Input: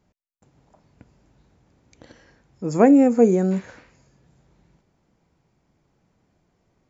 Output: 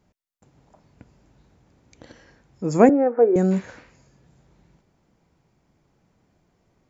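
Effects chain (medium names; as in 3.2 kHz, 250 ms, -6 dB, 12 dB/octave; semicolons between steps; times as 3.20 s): 2.89–3.36 s: Chebyshev band-pass 340–1700 Hz, order 3; trim +1.5 dB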